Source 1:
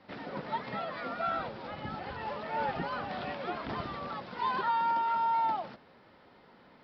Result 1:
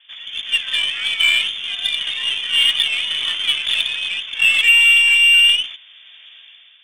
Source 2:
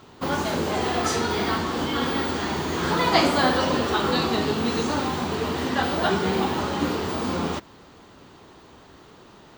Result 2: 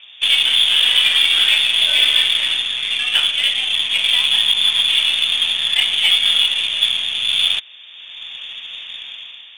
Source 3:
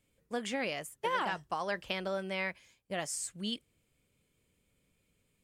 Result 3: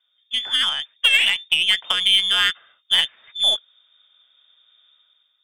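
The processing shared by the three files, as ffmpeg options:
-af "lowpass=f=3.1k:t=q:w=0.5098,lowpass=f=3.1k:t=q:w=0.6013,lowpass=f=3.1k:t=q:w=0.9,lowpass=f=3.1k:t=q:w=2.563,afreqshift=-3700,crystalizer=i=9.5:c=0,dynaudnorm=f=110:g=9:m=10dB,aeval=exprs='1*(cos(1*acos(clip(val(0)/1,-1,1)))-cos(1*PI/2))+0.0708*(cos(3*acos(clip(val(0)/1,-1,1)))-cos(3*PI/2))+0.0447*(cos(5*acos(clip(val(0)/1,-1,1)))-cos(5*PI/2))+0.0631*(cos(7*acos(clip(val(0)/1,-1,1)))-cos(7*PI/2))+0.01*(cos(8*acos(clip(val(0)/1,-1,1)))-cos(8*PI/2))':c=same,volume=-1dB"

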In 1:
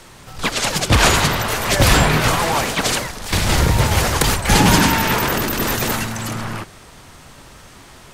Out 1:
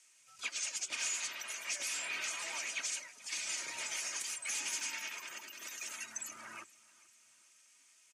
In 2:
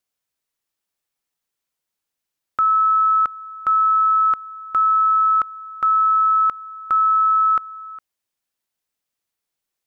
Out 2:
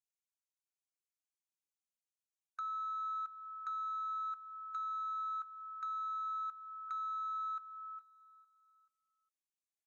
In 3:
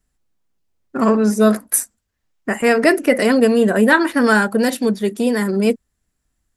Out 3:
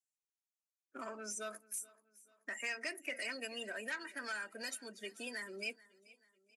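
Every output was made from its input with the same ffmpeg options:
-filter_complex "[0:a]afftdn=nr=18:nf=-28,aderivative,bandreject=f=1.1k:w=22,aecho=1:1:3.2:0.41,acrossover=split=220|850[a][b][c];[a]alimiter=level_in=30dB:limit=-24dB:level=0:latency=1,volume=-30dB[d];[d][b][c]amix=inputs=3:normalize=0,acompressor=threshold=-42dB:ratio=2.5,asoftclip=type=tanh:threshold=-33.5dB,highpass=140,equalizer=f=860:t=q:w=4:g=-4,equalizer=f=2.4k:t=q:w=4:g=9,equalizer=f=3.9k:t=q:w=4:g=-5,equalizer=f=6.4k:t=q:w=4:g=7,lowpass=f=10k:w=0.5412,lowpass=f=10k:w=1.3066,asplit=2[e][f];[f]aecho=0:1:433|866|1299:0.0794|0.0365|0.0168[g];[e][g]amix=inputs=2:normalize=0" -ar 44100 -c:a libvorbis -b:a 64k

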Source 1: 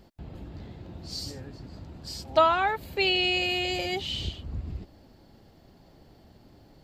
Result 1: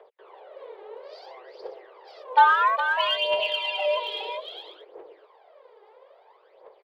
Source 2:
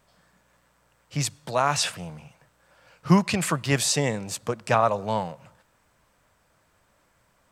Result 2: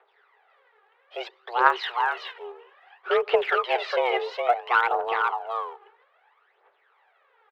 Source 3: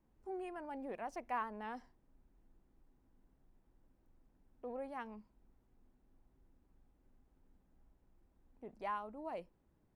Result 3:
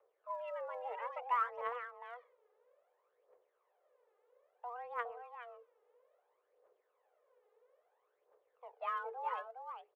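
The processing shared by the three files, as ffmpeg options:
-filter_complex "[0:a]equalizer=f=2.5k:t=o:w=0.77:g=-3.5,asplit=2[a][b];[b]aeval=exprs='(mod(3.16*val(0)+1,2)-1)/3.16':c=same,volume=-8.5dB[c];[a][c]amix=inputs=2:normalize=0,highpass=f=190:t=q:w=0.5412,highpass=f=190:t=q:w=1.307,lowpass=f=3.2k:t=q:w=0.5176,lowpass=f=3.2k:t=q:w=0.7071,lowpass=f=3.2k:t=q:w=1.932,afreqshift=240,aecho=1:1:413:0.562,aphaser=in_gain=1:out_gain=1:delay=2.5:decay=0.66:speed=0.6:type=triangular,volume=-2.5dB"

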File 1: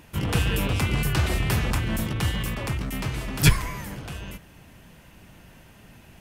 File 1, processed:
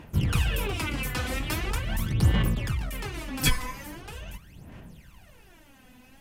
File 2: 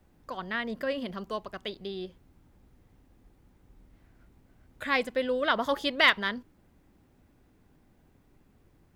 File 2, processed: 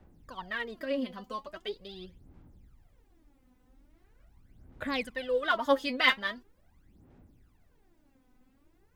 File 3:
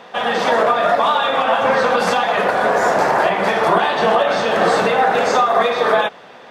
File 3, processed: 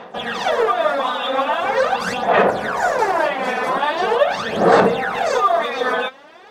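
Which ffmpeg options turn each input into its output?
-af "aphaser=in_gain=1:out_gain=1:delay=4:decay=0.74:speed=0.42:type=sinusoidal,volume=-6.5dB"

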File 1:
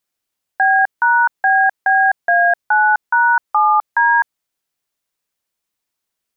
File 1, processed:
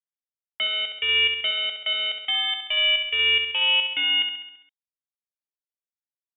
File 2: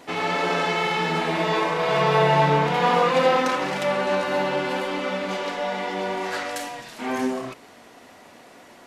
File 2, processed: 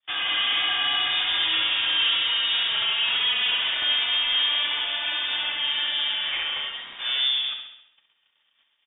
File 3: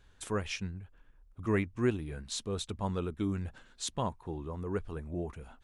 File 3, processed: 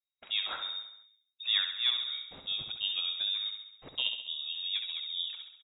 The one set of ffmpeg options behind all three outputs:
-filter_complex "[0:a]bandreject=f=60:t=h:w=6,bandreject=f=120:t=h:w=6,bandreject=f=180:t=h:w=6,bandreject=f=240:t=h:w=6,bandreject=f=300:t=h:w=6,bandreject=f=360:t=h:w=6,bandreject=f=420:t=h:w=6,agate=range=-36dB:threshold=-44dB:ratio=16:detection=peak,adynamicequalizer=threshold=0.0316:dfrequency=720:dqfactor=3.2:tfrequency=720:tqfactor=3.2:attack=5:release=100:ratio=0.375:range=3:mode=boostabove:tftype=bell,alimiter=limit=-12.5dB:level=0:latency=1:release=170,volume=21.5dB,asoftclip=hard,volume=-21.5dB,asplit=2[a][b];[b]aecho=0:1:67|134|201|268|335|402|469:0.447|0.255|0.145|0.0827|0.0472|0.0269|0.0153[c];[a][c]amix=inputs=2:normalize=0,lowpass=f=3.2k:t=q:w=0.5098,lowpass=f=3.2k:t=q:w=0.6013,lowpass=f=3.2k:t=q:w=0.9,lowpass=f=3.2k:t=q:w=2.563,afreqshift=-3800"

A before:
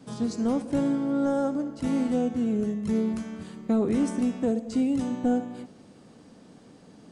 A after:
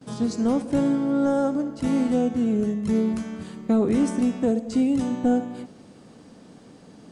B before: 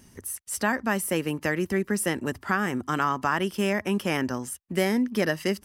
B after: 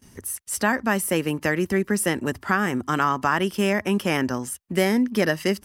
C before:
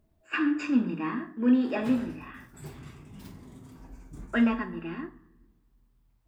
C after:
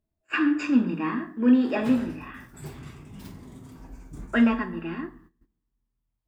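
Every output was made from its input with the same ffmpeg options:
-af "agate=range=-17dB:threshold=-56dB:ratio=16:detection=peak,volume=3.5dB"

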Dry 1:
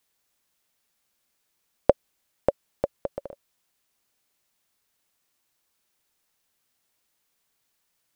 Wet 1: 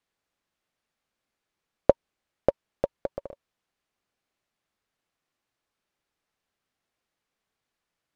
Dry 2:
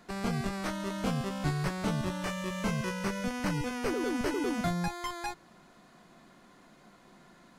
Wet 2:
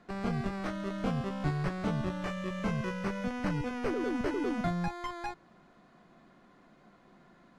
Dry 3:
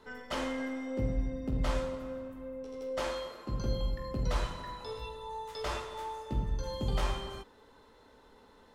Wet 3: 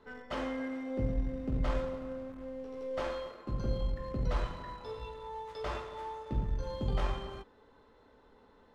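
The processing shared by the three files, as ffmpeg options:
-filter_complex "[0:a]asplit=2[a][b];[b]acrusher=bits=4:dc=4:mix=0:aa=0.000001,volume=-11dB[c];[a][c]amix=inputs=2:normalize=0,aemphasis=mode=reproduction:type=75fm,bandreject=f=930:w=23,volume=-2.5dB"

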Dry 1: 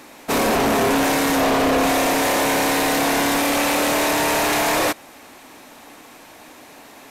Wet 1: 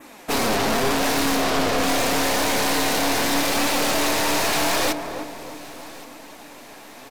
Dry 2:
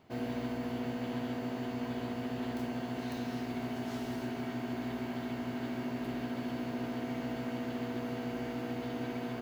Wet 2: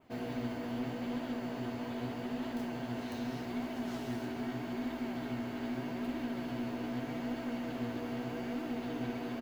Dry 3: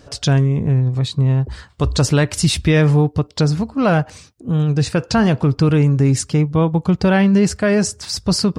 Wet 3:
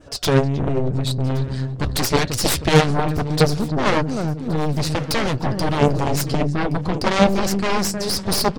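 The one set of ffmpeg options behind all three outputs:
-filter_complex "[0:a]flanger=delay=2.9:depth=7.6:regen=47:speed=0.81:shape=triangular,asplit=2[a][b];[b]adelay=313,lowpass=f=960:p=1,volume=-8.5dB,asplit=2[c][d];[d]adelay=313,lowpass=f=960:p=1,volume=0.52,asplit=2[e][f];[f]adelay=313,lowpass=f=960:p=1,volume=0.52,asplit=2[g][h];[h]adelay=313,lowpass=f=960:p=1,volume=0.52,asplit=2[i][j];[j]adelay=313,lowpass=f=960:p=1,volume=0.52,asplit=2[k][l];[l]adelay=313,lowpass=f=960:p=1,volume=0.52[m];[c][e][g][i][k][m]amix=inputs=6:normalize=0[n];[a][n]amix=inputs=2:normalize=0,adynamicequalizer=threshold=0.00501:dfrequency=4600:dqfactor=1.6:tfrequency=4600:tqfactor=1.6:attack=5:release=100:ratio=0.375:range=3:mode=boostabove:tftype=bell,aeval=exprs='0.708*(cos(1*acos(clip(val(0)/0.708,-1,1)))-cos(1*PI/2))+0.126*(cos(3*acos(clip(val(0)/0.708,-1,1)))-cos(3*PI/2))+0.0708*(cos(6*acos(clip(val(0)/0.708,-1,1)))-cos(6*PI/2))+0.158*(cos(7*acos(clip(val(0)/0.708,-1,1)))-cos(7*PI/2))+0.112*(cos(8*acos(clip(val(0)/0.708,-1,1)))-cos(8*PI/2))':c=same,asplit=2[o][p];[p]aecho=0:1:1121|2242|3363:0.0891|0.0428|0.0205[q];[o][q]amix=inputs=2:normalize=0,volume=2dB"

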